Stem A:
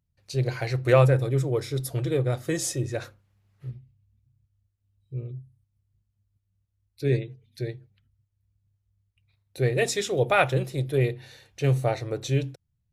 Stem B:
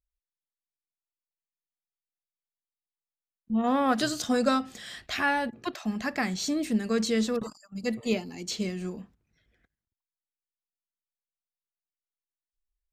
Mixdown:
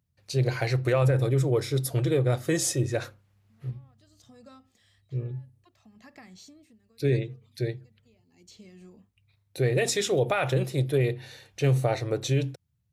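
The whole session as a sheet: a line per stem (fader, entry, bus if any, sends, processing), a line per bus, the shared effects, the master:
+2.5 dB, 0.00 s, no send, high-pass 71 Hz 12 dB/octave
-12.0 dB, 0.00 s, no send, band-stop 1.5 kHz, Q 7; compression 16:1, threshold -33 dBFS, peak gain reduction 14.5 dB; auto duck -18 dB, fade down 0.60 s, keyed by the first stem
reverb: none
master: peak limiter -15 dBFS, peak gain reduction 11 dB

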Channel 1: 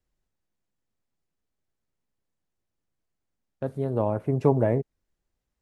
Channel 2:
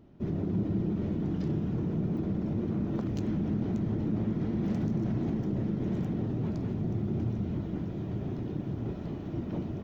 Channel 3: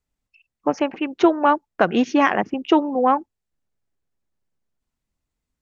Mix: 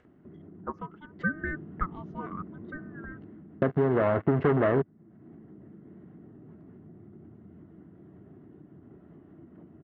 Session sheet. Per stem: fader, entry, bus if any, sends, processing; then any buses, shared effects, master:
+2.0 dB, 0.00 s, bus A, no send, waveshaping leveller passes 5
1.17 s -19.5 dB -> 1.44 s -9.5 dB -> 3.17 s -9.5 dB -> 3.47 s -21.5 dB, 0.05 s, bus A, no send, none
-2.0 dB, 0.00 s, no bus, no send, auto-wah 680–1400 Hz, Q 8, down, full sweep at -15.5 dBFS; ring modulator with a swept carrier 650 Hz, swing 45%, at 0.7 Hz; auto duck -17 dB, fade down 1.80 s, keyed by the first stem
bus A: 0.0 dB, cabinet simulation 110–2200 Hz, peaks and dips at 120 Hz -9 dB, 210 Hz -4 dB, 530 Hz -7 dB, 880 Hz -6 dB; compression 3:1, threshold -24 dBFS, peak gain reduction 11.5 dB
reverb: none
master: band-stop 2.4 kHz, Q 6.1; upward compressor, threshold -41 dBFS

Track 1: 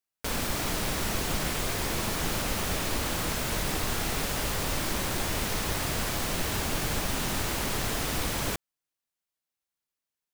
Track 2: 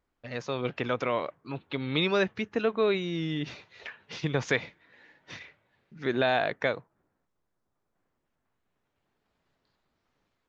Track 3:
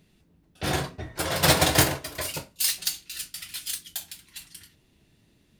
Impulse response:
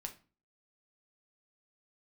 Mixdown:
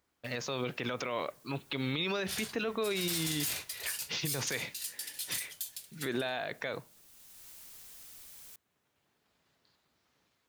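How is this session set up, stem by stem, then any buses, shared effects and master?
-18.0 dB, 0.00 s, no bus, no send, pre-emphasis filter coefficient 0.9; auto duck -12 dB, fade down 0.40 s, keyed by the second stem
-1.0 dB, 0.00 s, bus A, send -12.5 dB, high-pass 63 Hz
-11.5 dB, 1.65 s, bus A, no send, amplifier tone stack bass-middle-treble 10-0-10
bus A: 0.0 dB, treble shelf 2.7 kHz +11 dB; peak limiter -17.5 dBFS, peak gain reduction 8.5 dB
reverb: on, RT60 0.35 s, pre-delay 6 ms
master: peak limiter -23.5 dBFS, peak gain reduction 8 dB

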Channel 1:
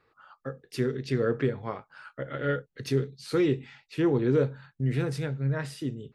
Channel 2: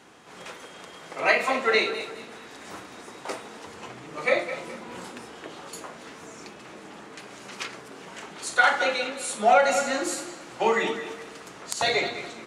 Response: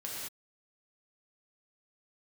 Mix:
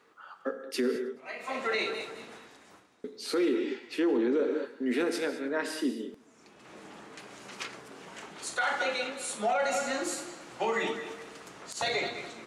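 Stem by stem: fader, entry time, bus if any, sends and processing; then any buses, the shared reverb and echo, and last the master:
+2.5 dB, 0.00 s, muted 0.96–3.04 s, send -6.5 dB, echo send -21.5 dB, steep high-pass 210 Hz 72 dB/octave
1.08 s -15.5 dB -> 1.66 s -4.5 dB, 0.00 s, no send, no echo send, auto duck -20 dB, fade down 0.70 s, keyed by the first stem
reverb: on, pre-delay 3 ms
echo: feedback delay 106 ms, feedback 58%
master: peak limiter -20 dBFS, peak gain reduction 10.5 dB

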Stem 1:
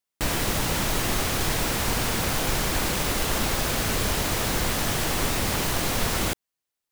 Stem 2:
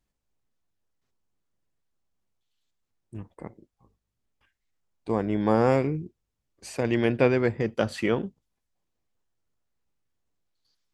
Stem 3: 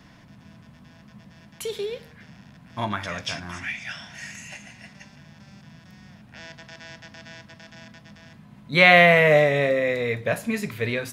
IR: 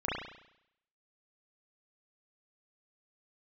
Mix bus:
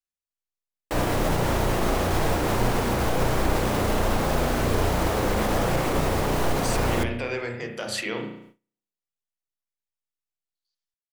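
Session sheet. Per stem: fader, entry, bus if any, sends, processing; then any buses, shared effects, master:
+1.5 dB, 0.70 s, bus A, send -15.5 dB, tilt shelf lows +9.5 dB, about 1.2 kHz
-2.0 dB, 0.00 s, bus A, send -10 dB, peak limiter -20 dBFS, peak gain reduction 11.5 dB; treble shelf 2 kHz +11.5 dB
mute
bus A: 0.0 dB, high-pass 420 Hz 12 dB/octave; peak limiter -18.5 dBFS, peak gain reduction 5.5 dB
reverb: on, RT60 0.75 s, pre-delay 33 ms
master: gate with hold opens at -39 dBFS

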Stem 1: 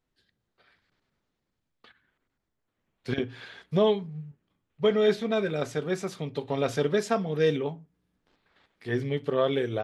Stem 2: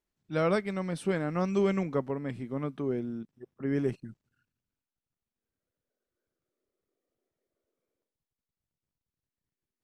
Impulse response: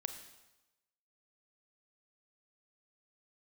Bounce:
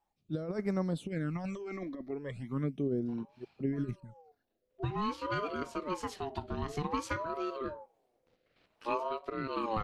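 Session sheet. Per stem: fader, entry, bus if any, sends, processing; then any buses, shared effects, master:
+0.5 dB, 0.00 s, no send, bass shelf 130 Hz +8.5 dB; compression 6:1, threshold -26 dBFS, peak gain reduction 9.5 dB; ring modulator with a swept carrier 670 Hz, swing 25%, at 0.54 Hz; auto duck -20 dB, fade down 0.20 s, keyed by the second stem
0.0 dB, 0.00 s, no send, compressor with a negative ratio -30 dBFS, ratio -0.5; phase shifter stages 12, 0.39 Hz, lowest notch 140–3200 Hz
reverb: none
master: rotary cabinet horn 1.1 Hz

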